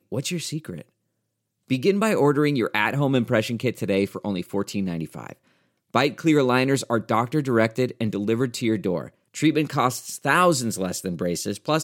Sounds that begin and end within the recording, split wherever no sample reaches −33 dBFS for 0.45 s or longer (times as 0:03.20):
0:01.70–0:05.32